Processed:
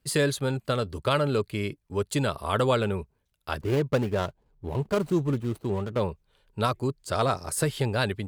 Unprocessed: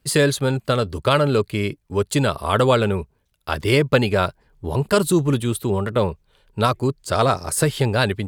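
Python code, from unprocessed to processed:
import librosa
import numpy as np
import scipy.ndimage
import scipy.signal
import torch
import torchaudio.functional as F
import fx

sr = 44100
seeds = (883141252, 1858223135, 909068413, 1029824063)

y = fx.median_filter(x, sr, points=25, at=(3.6, 5.99), fade=0.02)
y = y * 10.0 ** (-7.0 / 20.0)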